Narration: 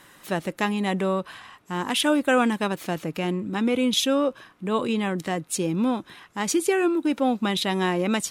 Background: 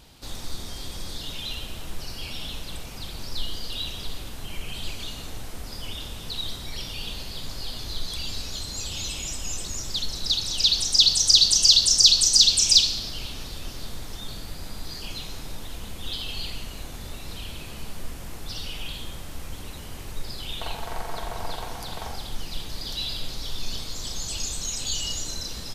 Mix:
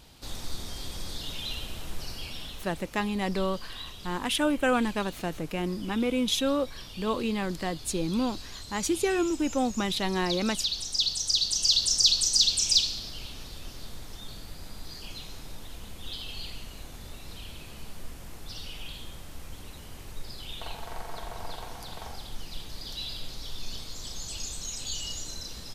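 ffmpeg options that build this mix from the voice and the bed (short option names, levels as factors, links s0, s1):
-filter_complex "[0:a]adelay=2350,volume=0.596[s0];[1:a]volume=1.19,afade=t=out:st=2.07:d=0.63:silence=0.421697,afade=t=in:st=11.43:d=0.45:silence=0.668344[s1];[s0][s1]amix=inputs=2:normalize=0"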